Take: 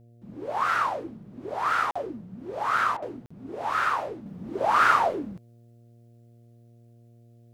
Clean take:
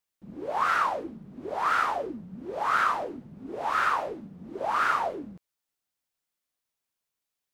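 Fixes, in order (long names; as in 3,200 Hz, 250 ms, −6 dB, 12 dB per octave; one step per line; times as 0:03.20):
hum removal 117.4 Hz, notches 6
repair the gap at 0:01.91/0:03.26, 45 ms
repair the gap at 0:02.97, 51 ms
level 0 dB, from 0:04.26 −5.5 dB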